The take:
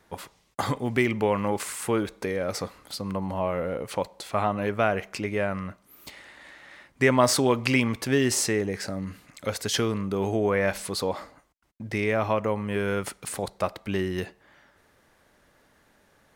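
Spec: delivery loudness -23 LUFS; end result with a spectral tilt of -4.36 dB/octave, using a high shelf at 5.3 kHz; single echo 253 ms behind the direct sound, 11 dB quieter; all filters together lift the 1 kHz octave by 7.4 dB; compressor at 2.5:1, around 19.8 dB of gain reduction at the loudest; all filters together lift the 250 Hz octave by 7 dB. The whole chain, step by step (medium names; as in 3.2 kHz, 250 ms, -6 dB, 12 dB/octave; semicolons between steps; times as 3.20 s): peaking EQ 250 Hz +8 dB; peaking EQ 1 kHz +8.5 dB; treble shelf 5.3 kHz +6 dB; compression 2.5:1, threshold -40 dBFS; delay 253 ms -11 dB; trim +14 dB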